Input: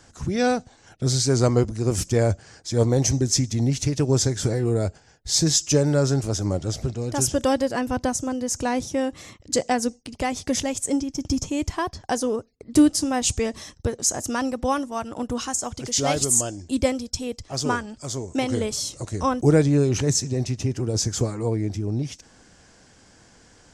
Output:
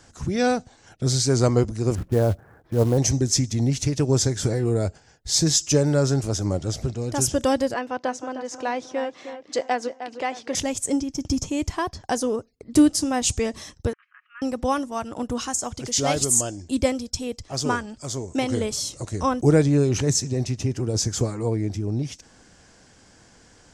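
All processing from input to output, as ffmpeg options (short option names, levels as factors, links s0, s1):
-filter_complex "[0:a]asettb=1/sr,asplit=3[s0][s1][s2];[s0]atrim=end=1.954[s3];[s1]atrim=start=1.95:end=2.98,asetpts=PTS-STARTPTS,afade=t=in:d=0.004:c=qsin,afade=t=out:st=1.026:d=0.004:c=qsin,lowpass=f=1500:w=0.5412,lowpass=f=1500:w=1.3066,acrusher=bits=6:mode=log:mix=0:aa=0.000001[s4];[s2]atrim=start=2.976[s5];[s3][s4]acrossfade=d=0.004:c1=hsin:c2=qsin[s6];[s6][s5]acrossfade=d=0.004:c1=qsin:c2=hsin,asettb=1/sr,asplit=3[s7][s8][s9];[s7]atrim=end=7.744[s10];[s8]atrim=start=7.74:end=10.55,asetpts=PTS-STARTPTS,afade=t=in:d=0.004:c=qsin,afade=t=out:st=2.806:d=0.004:c=qsin,highpass=400,lowpass=3700,asplit=2[s11][s12];[s12]adelay=309,lowpass=f=2900:p=1,volume=0.316,asplit=2[s13][s14];[s14]adelay=309,lowpass=f=2900:p=1,volume=0.42,asplit=2[s15][s16];[s16]adelay=309,lowpass=f=2900:p=1,volume=0.42,asplit=2[s17][s18];[s18]adelay=309,lowpass=f=2900:p=1,volume=0.42[s19];[s11][s13][s15][s17][s19]amix=inputs=5:normalize=0,atrim=end_sample=123921[s20];[s9]atrim=start=10.546[s21];[s10][s20]acrossfade=d=0.004:c1=hsin:c2=qsin[s22];[s22][s21]acrossfade=d=0.004:c1=qsin:c2=hsin,asettb=1/sr,asplit=3[s23][s24][s25];[s23]atrim=end=13.934[s26];[s24]atrim=start=13.93:end=14.42,asetpts=PTS-STARTPTS,afade=t=in:d=0.004:c=qsin,afade=t=out:st=0.486:d=0.004:c=qsin,aecho=1:1:5.5:0.35,atrim=end_sample=21609,acompressor=threshold=0.0282:ratio=16:attack=3.2:release=140:knee=1:detection=peak,asuperpass=centerf=1800:order=12:qfactor=1.1[s27];[s25]atrim=start=14.416[s28];[s26][s27]acrossfade=d=0.004:c1=hsin:c2=qsin[s29];[s29][s28]acrossfade=d=0.004:c1=qsin:c2=hsin"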